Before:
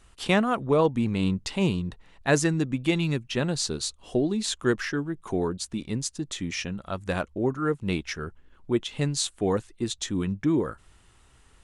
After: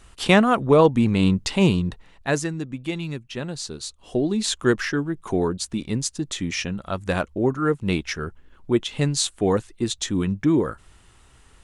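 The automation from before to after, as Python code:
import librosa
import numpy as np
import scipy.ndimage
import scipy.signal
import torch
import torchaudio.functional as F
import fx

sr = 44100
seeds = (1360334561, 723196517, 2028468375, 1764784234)

y = fx.gain(x, sr, db=fx.line((1.88, 6.5), (2.51, -4.0), (3.77, -4.0), (4.39, 4.5)))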